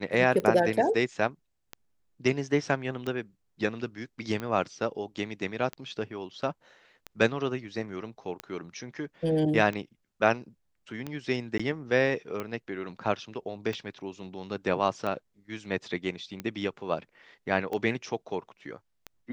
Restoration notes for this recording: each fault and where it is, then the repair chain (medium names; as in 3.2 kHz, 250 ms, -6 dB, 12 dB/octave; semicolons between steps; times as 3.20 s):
tick 45 rpm -20 dBFS
11.58–11.60 s: dropout 15 ms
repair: de-click; interpolate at 11.58 s, 15 ms